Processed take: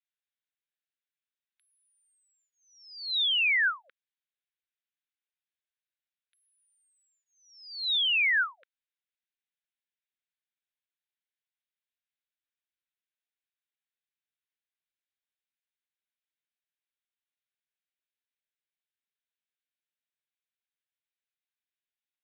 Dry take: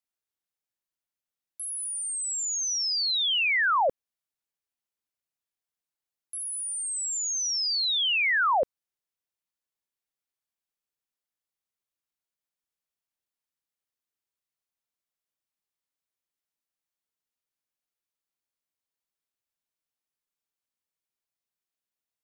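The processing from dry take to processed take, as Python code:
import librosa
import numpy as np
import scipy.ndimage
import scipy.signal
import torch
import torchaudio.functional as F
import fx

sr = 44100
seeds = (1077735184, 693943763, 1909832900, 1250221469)

y = scipy.signal.sosfilt(scipy.signal.ellip(3, 1.0, 40, [1500.0, 3800.0], 'bandpass', fs=sr, output='sos'), x)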